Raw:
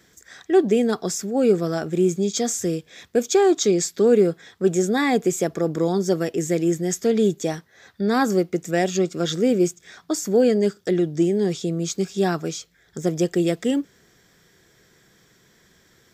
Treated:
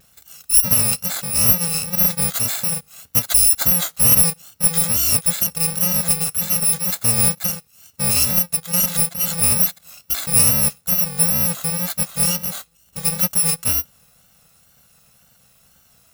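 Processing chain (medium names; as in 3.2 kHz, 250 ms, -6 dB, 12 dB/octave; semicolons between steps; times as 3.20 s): bit-reversed sample order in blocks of 128 samples; wow and flutter 80 cents; trim +3 dB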